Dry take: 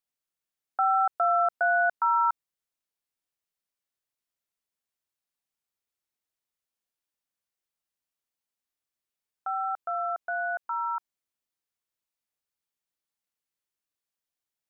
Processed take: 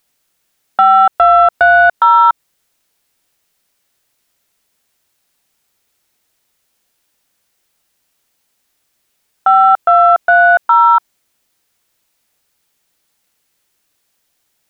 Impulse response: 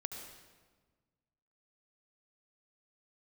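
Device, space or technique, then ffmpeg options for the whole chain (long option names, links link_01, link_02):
mastering chain: -af "equalizer=frequency=1100:width_type=o:width=0.32:gain=-2.5,acompressor=threshold=-26dB:ratio=3,asoftclip=type=tanh:threshold=-19dB,alimiter=level_in=25dB:limit=-1dB:release=50:level=0:latency=1,volume=-1dB"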